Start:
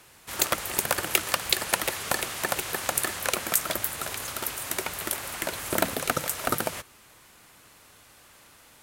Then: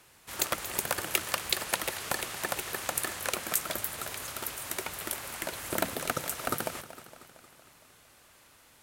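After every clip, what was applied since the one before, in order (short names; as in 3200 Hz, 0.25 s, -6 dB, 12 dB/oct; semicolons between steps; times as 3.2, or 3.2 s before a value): warbling echo 0.23 s, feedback 60%, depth 81 cents, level -14.5 dB; gain -5 dB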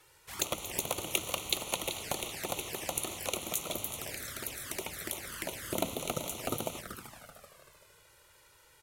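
frequency-shifting echo 0.383 s, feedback 32%, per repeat -38 Hz, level -11 dB; envelope flanger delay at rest 2.4 ms, full sweep at -31.5 dBFS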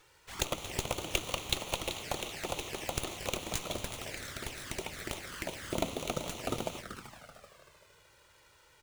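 running maximum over 3 samples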